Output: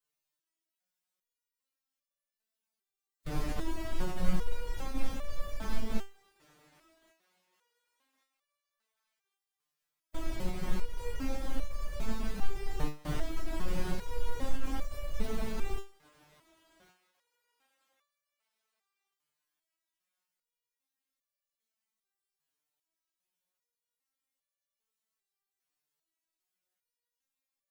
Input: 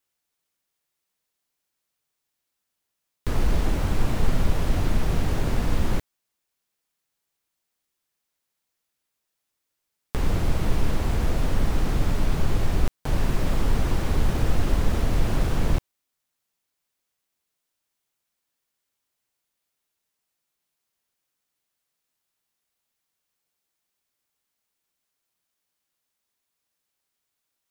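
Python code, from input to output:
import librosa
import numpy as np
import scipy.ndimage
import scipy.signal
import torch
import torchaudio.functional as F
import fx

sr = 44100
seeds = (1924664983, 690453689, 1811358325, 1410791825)

y = fx.pitch_keep_formants(x, sr, semitones=3.5)
y = fx.echo_thinned(y, sr, ms=1116, feedback_pct=38, hz=800.0, wet_db=-20)
y = fx.resonator_held(y, sr, hz=2.5, low_hz=150.0, high_hz=580.0)
y = y * librosa.db_to_amplitude(5.0)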